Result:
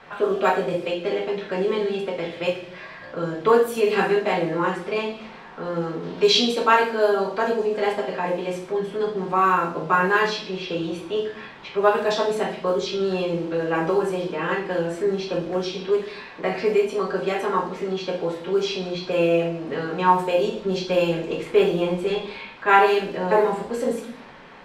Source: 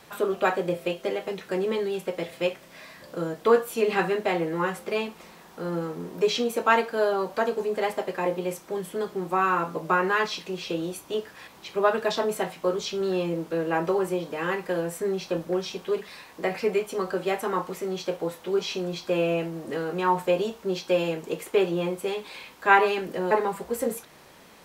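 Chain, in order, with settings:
0:20.56–0:22.35: low-shelf EQ 110 Hz +11 dB
low-pass that shuts in the quiet parts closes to 1,800 Hz, open at −18.5 dBFS
0:06.03–0:06.59: parametric band 4,000 Hz +9.5 dB 1.1 octaves
convolution reverb RT60 0.55 s, pre-delay 4 ms, DRR −1 dB
one half of a high-frequency compander encoder only

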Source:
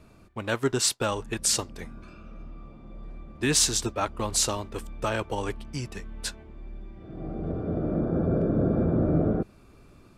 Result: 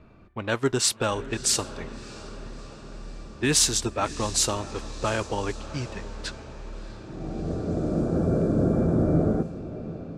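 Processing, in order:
feedback delay with all-pass diffusion 652 ms, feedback 62%, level −14.5 dB
low-pass that shuts in the quiet parts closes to 2,800 Hz, open at −19.5 dBFS
level +1.5 dB

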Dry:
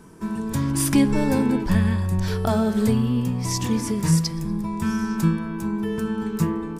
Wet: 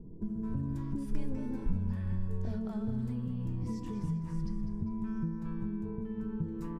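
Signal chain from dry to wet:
multiband delay without the direct sound lows, highs 220 ms, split 640 Hz
downward compressor 6 to 1, threshold −32 dBFS, peak gain reduction 17 dB
spectral tilt −3.5 dB per octave
tuned comb filter 490 Hz, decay 0.32 s, harmonics all, mix 70%
0:04.17–0:06.43: high-shelf EQ 3,800 Hz −10.5 dB
repeating echo 200 ms, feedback 46%, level −11 dB

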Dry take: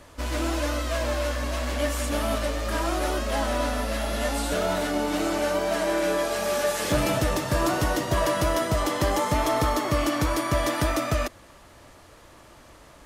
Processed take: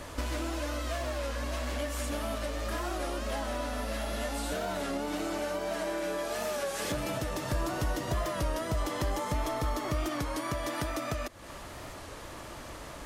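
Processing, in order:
downward compressor 12 to 1, threshold −37 dBFS, peak gain reduction 18 dB
0:07.52–0:10.19: low-shelf EQ 71 Hz +11 dB
wow of a warped record 33 1/3 rpm, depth 100 cents
level +6.5 dB

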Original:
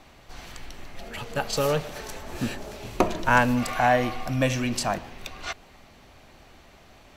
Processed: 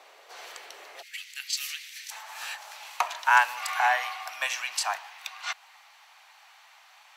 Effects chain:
Chebyshev high-pass filter 430 Hz, order 4, from 0:01.01 2,000 Hz, from 0:02.10 830 Hz
level +1.5 dB

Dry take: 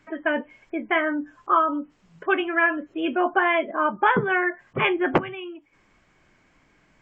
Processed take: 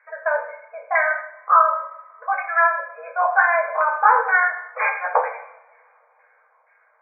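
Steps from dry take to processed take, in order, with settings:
auto-filter low-pass saw down 2.1 Hz 880–1,900 Hz
coupled-rooms reverb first 0.66 s, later 3.2 s, from −28 dB, DRR 0.5 dB
brick-wall band-pass 450–2,500 Hz
level −2 dB

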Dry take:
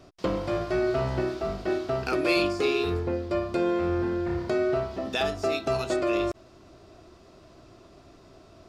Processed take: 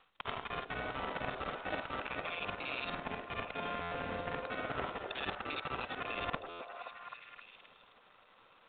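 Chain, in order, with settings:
reversed piece by piece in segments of 50 ms
gate on every frequency bin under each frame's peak −10 dB weak
tilt shelving filter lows −4 dB, about 650 Hz
brickwall limiter −23 dBFS, peak gain reduction 10 dB
reversed playback
downward compressor 6 to 1, threshold −45 dBFS, peak gain reduction 14.5 dB
reversed playback
power curve on the samples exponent 2
echo through a band-pass that steps 262 ms, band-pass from 440 Hz, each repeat 0.7 octaves, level −2 dB
on a send at −22.5 dB: convolution reverb RT60 0.40 s, pre-delay 92 ms
on the sum: buffer that repeats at 0:03.81/0:06.49, samples 512, times 8
level +17.5 dB
mu-law 64 kbit/s 8,000 Hz

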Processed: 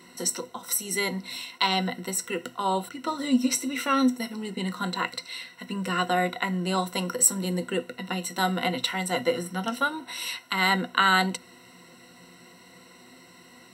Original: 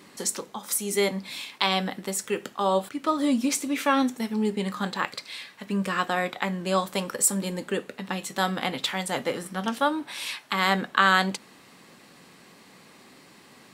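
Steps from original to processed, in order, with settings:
EQ curve with evenly spaced ripples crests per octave 2, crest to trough 16 dB
level −2.5 dB

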